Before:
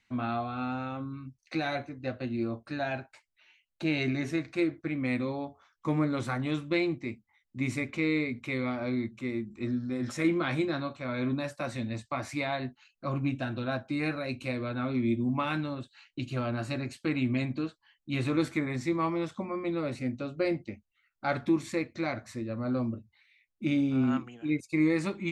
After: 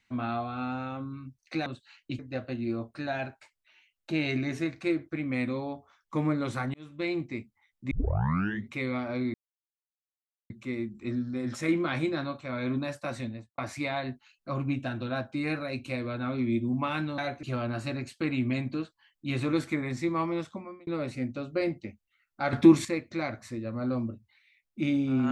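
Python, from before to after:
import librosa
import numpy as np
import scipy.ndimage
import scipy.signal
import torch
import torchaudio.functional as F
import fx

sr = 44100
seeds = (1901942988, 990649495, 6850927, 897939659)

y = fx.studio_fade_out(x, sr, start_s=11.72, length_s=0.42)
y = fx.edit(y, sr, fx.swap(start_s=1.66, length_s=0.25, other_s=15.74, other_length_s=0.53),
    fx.fade_in_span(start_s=6.46, length_s=0.49),
    fx.tape_start(start_s=7.63, length_s=0.8),
    fx.insert_silence(at_s=9.06, length_s=1.16),
    fx.fade_out_span(start_s=19.24, length_s=0.47),
    fx.clip_gain(start_s=21.37, length_s=0.32, db=9.5), tone=tone)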